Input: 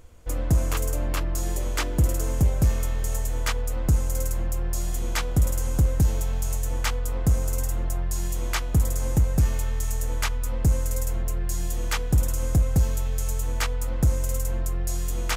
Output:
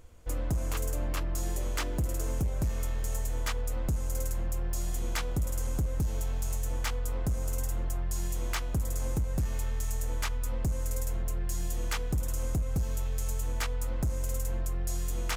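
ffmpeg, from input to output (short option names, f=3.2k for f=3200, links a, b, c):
-af "acompressor=threshold=-21dB:ratio=6,asoftclip=type=hard:threshold=-20.5dB,volume=-4dB"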